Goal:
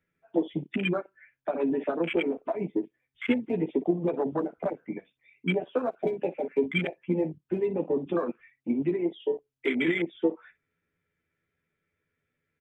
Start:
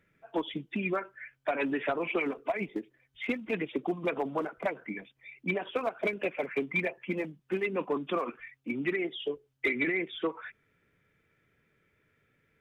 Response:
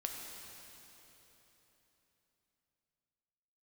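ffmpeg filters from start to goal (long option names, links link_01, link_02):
-filter_complex "[0:a]acrossover=split=470|3000[link_01][link_02][link_03];[link_02]acompressor=threshold=-38dB:ratio=6[link_04];[link_01][link_04][link_03]amix=inputs=3:normalize=0,aecho=1:1:12|60:0.631|0.168,afwtdn=0.0224,volume=5dB"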